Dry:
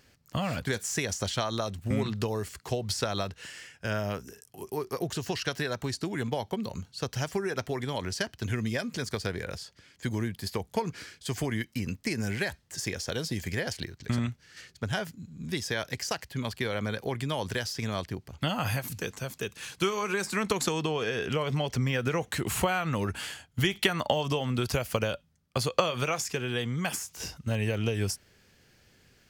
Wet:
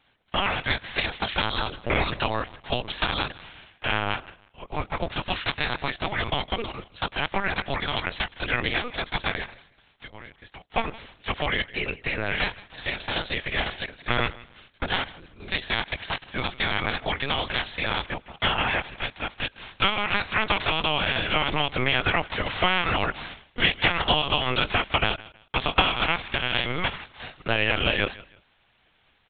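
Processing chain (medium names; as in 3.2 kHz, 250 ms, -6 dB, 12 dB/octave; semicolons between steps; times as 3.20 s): spectral peaks clipped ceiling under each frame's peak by 21 dB; high-pass 290 Hz 12 dB/octave; waveshaping leveller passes 1; 9.44–10.72 s: compression 5:1, threshold -44 dBFS, peak gain reduction 18.5 dB; feedback delay 162 ms, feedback 28%, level -20 dB; LPC vocoder at 8 kHz pitch kept; trim +2.5 dB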